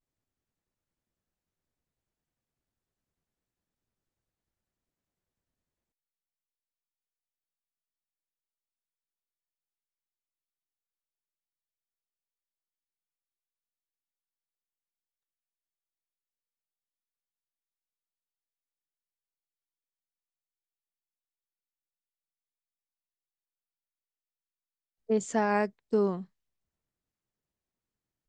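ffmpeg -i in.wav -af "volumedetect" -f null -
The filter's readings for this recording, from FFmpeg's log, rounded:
mean_volume: -41.8 dB
max_volume: -14.3 dB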